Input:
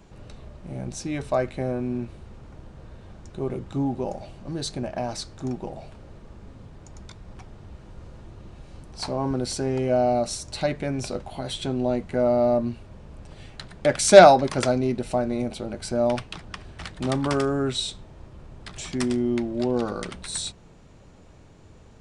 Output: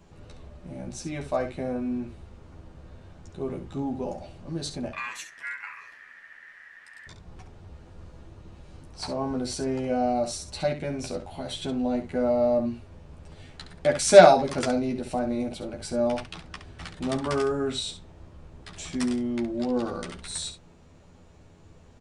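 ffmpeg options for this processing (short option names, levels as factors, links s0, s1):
-filter_complex "[0:a]asettb=1/sr,asplit=3[s0][s1][s2];[s0]atrim=end=4.934[s3];[s1]atrim=start=4.93:end=7.07,asetpts=PTS-STARTPTS,afade=t=in:d=0.004:c=qsin,afade=t=out:st=2.136:d=0.004:c=qsin,aeval=exprs='val(0)*sin(2*PI*1800*n/s)':c=same[s4];[s2]atrim=start=7.066[s5];[s3][s4]acrossfade=d=0.004:c1=hsin:c2=qsin[s6];[s6][s5]acrossfade=d=0.004:c1=qsin:c2=hsin,asplit=2[s7][s8];[s8]aecho=0:1:12|68:0.708|0.355[s9];[s7][s9]amix=inputs=2:normalize=0,volume=0.562"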